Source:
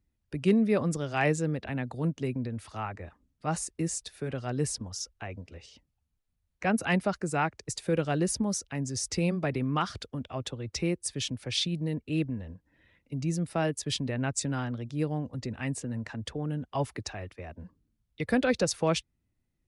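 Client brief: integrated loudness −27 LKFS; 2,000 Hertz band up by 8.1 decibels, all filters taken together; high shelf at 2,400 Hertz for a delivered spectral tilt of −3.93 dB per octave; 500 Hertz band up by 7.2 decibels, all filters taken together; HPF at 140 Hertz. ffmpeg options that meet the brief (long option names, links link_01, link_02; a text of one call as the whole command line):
ffmpeg -i in.wav -af "highpass=140,equalizer=frequency=500:width_type=o:gain=8,equalizer=frequency=2000:width_type=o:gain=8,highshelf=frequency=2400:gain=4" out.wav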